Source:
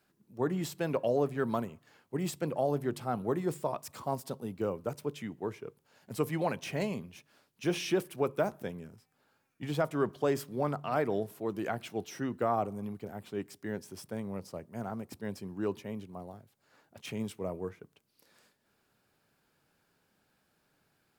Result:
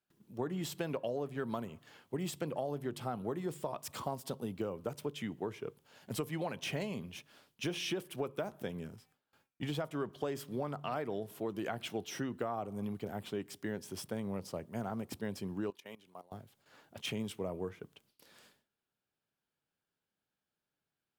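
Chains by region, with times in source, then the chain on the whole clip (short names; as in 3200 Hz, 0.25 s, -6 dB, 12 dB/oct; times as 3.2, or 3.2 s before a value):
15.7–16.32 HPF 1100 Hz 6 dB/oct + level quantiser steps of 17 dB
whole clip: gate with hold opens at -60 dBFS; bell 3200 Hz +5.5 dB 0.43 oct; compressor, threshold -37 dBFS; gain +3 dB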